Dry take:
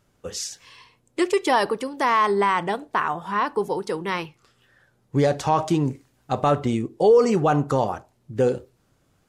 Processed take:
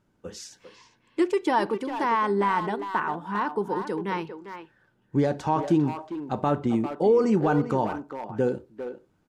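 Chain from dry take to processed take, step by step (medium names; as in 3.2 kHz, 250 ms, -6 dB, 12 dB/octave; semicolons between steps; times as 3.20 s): treble shelf 4.5 kHz -7.5 dB; small resonant body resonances 210/310/900/1500 Hz, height 8 dB, ringing for 40 ms; speakerphone echo 400 ms, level -8 dB; trim -6.5 dB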